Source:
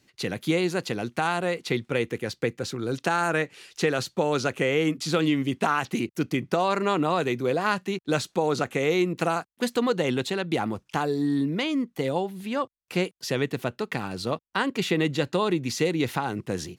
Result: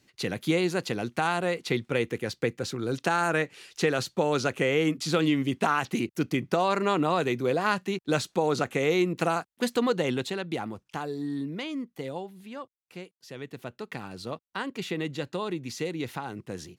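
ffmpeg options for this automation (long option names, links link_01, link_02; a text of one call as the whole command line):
ffmpeg -i in.wav -af "volume=10.5dB,afade=type=out:start_time=9.86:duration=0.87:silence=0.473151,afade=type=out:start_time=11.85:duration=1.33:silence=0.266073,afade=type=in:start_time=13.18:duration=0.72:silence=0.266073" out.wav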